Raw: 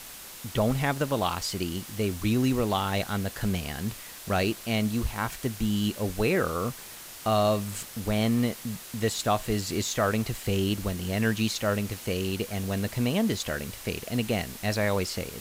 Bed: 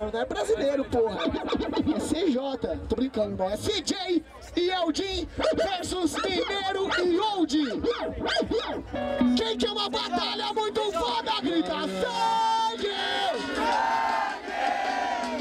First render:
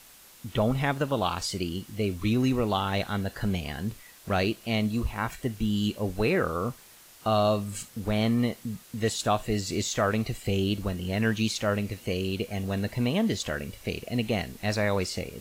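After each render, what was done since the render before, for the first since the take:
noise reduction from a noise print 9 dB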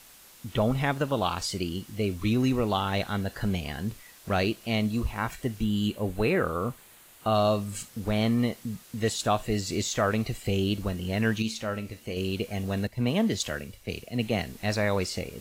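0:05.64–0:07.35: parametric band 5,400 Hz −8 dB 0.52 octaves
0:11.42–0:12.17: tuned comb filter 74 Hz, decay 0.29 s
0:12.87–0:14.45: multiband upward and downward expander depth 70%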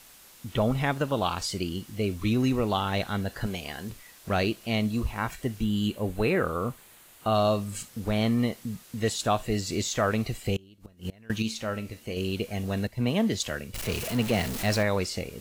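0:03.46–0:03.90: bass and treble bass −9 dB, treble +2 dB
0:10.56–0:11.30: gate with flip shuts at −22 dBFS, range −27 dB
0:13.74–0:14.83: converter with a step at zero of −29 dBFS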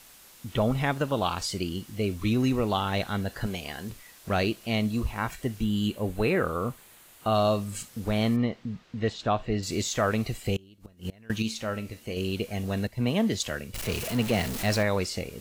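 0:08.36–0:09.63: high-frequency loss of the air 200 metres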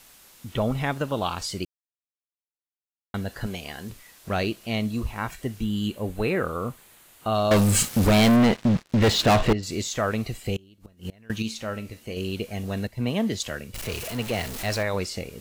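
0:01.65–0:03.14: silence
0:07.51–0:09.53: leveller curve on the samples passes 5
0:13.88–0:14.94: parametric band 190 Hz −6 dB 1.3 octaves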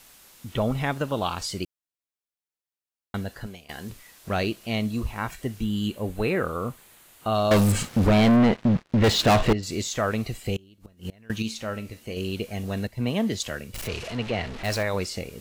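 0:03.16–0:03.69: fade out, to −18.5 dB
0:07.72–0:09.04: low-pass filter 2,300 Hz 6 dB per octave
0:13.87–0:14.63: low-pass filter 6,200 Hz → 2,800 Hz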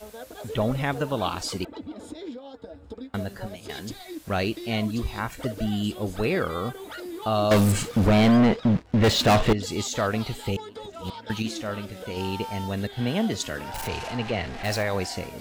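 mix in bed −12.5 dB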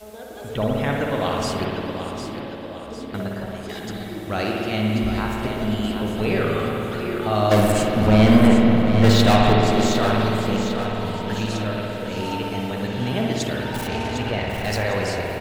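on a send: repeating echo 754 ms, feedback 50%, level −9 dB
on the sum: spring reverb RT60 3.1 s, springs 56 ms, chirp 60 ms, DRR −2 dB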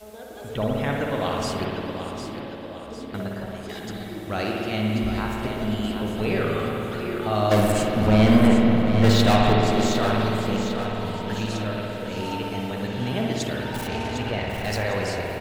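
level −2.5 dB

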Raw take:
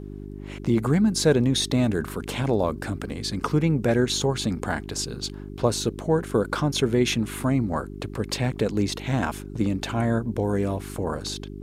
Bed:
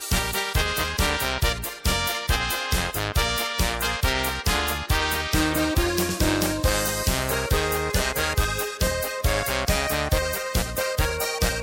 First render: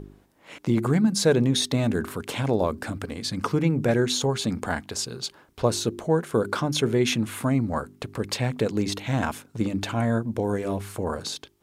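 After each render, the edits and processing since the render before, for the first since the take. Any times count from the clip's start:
hum removal 50 Hz, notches 8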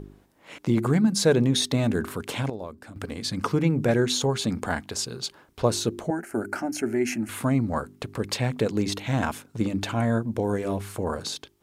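0:02.15–0:03.31: duck −12.5 dB, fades 0.35 s logarithmic
0:06.10–0:07.29: phaser with its sweep stopped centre 720 Hz, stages 8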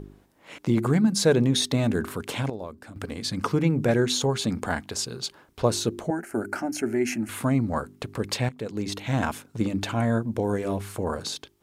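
0:08.49–0:09.14: fade in, from −14.5 dB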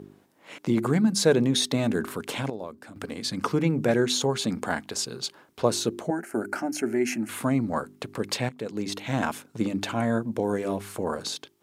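high-pass filter 150 Hz 12 dB per octave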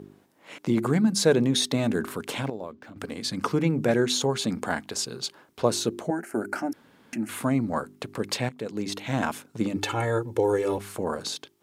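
0:02.45–0:02.98: linearly interpolated sample-rate reduction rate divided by 4×
0:06.73–0:07.13: fill with room tone
0:09.76–0:10.78: comb filter 2.3 ms, depth 94%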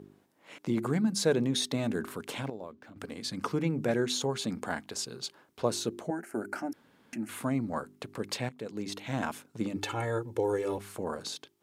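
level −6 dB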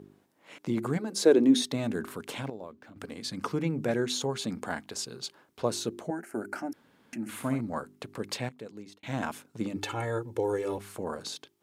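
0:00.97–0:01.61: high-pass with resonance 480 Hz → 240 Hz, resonance Q 3.8
0:07.20–0:07.61: flutter between parallel walls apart 10.5 metres, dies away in 0.41 s
0:08.45–0:09.03: fade out linear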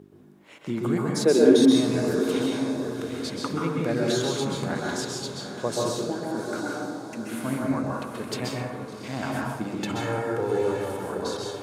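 feedback delay with all-pass diffusion 800 ms, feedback 41%, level −9 dB
dense smooth reverb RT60 1.2 s, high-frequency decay 0.45×, pre-delay 115 ms, DRR −2.5 dB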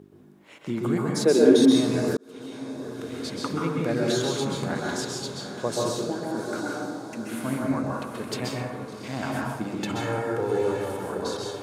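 0:02.17–0:03.44: fade in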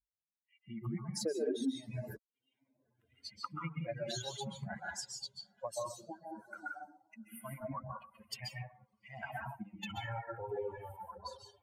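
spectral dynamics exaggerated over time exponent 3
downward compressor 3 to 1, threshold −37 dBFS, peak gain reduction 16.5 dB

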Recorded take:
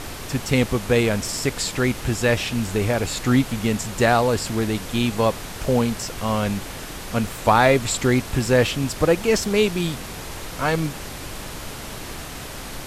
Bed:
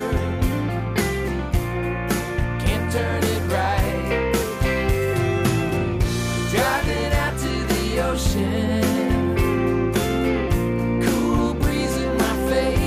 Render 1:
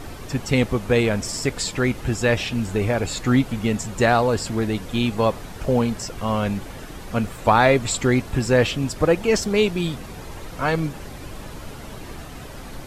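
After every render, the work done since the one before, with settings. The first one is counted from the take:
broadband denoise 9 dB, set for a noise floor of −35 dBFS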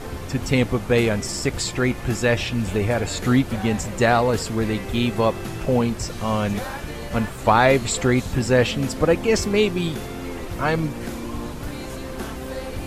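mix in bed −12 dB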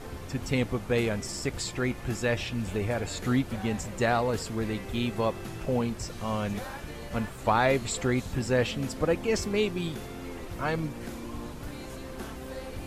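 level −8 dB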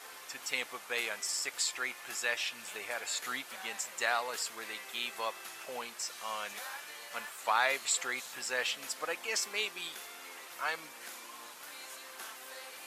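high-pass filter 1,100 Hz 12 dB per octave
high-shelf EQ 7,100 Hz +5.5 dB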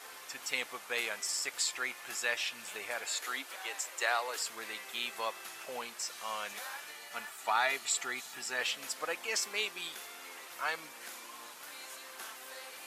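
0:03.05–0:04.38: Butterworth high-pass 260 Hz 96 dB per octave
0:06.92–0:08.61: notch comb filter 530 Hz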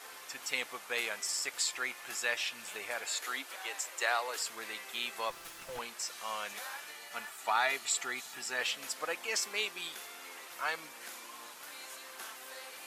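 0:05.30–0:05.79: lower of the sound and its delayed copy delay 5.9 ms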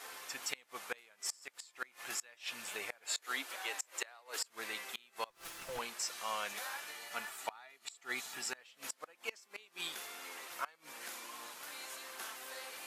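gate with flip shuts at −24 dBFS, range −26 dB

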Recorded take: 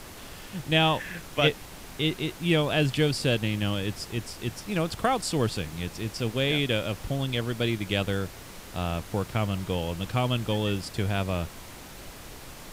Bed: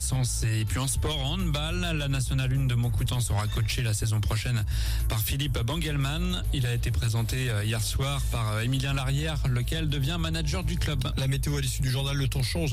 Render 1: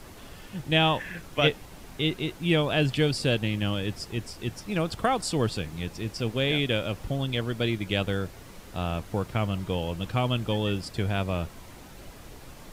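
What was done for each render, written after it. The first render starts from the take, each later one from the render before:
broadband denoise 6 dB, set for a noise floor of −44 dBFS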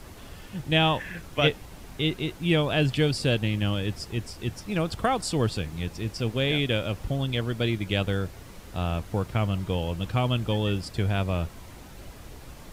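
parametric band 63 Hz +5 dB 1.7 octaves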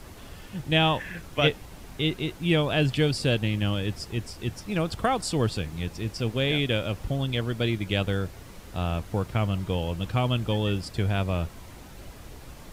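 no processing that can be heard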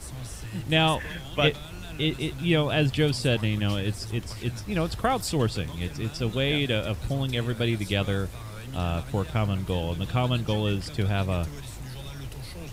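mix in bed −12.5 dB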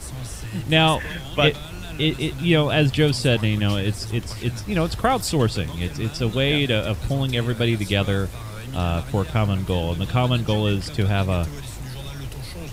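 level +5 dB
brickwall limiter −3 dBFS, peak gain reduction 1 dB

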